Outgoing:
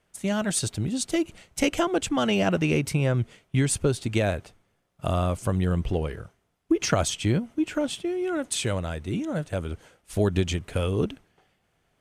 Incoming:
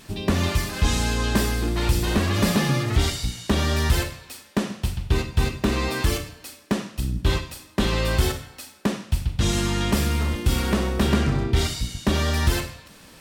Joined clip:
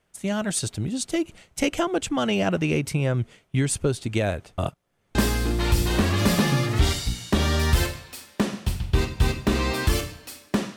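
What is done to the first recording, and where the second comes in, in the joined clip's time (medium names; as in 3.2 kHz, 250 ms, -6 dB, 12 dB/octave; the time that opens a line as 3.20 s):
outgoing
4.58–5.15 s: reverse
5.15 s: go over to incoming from 1.32 s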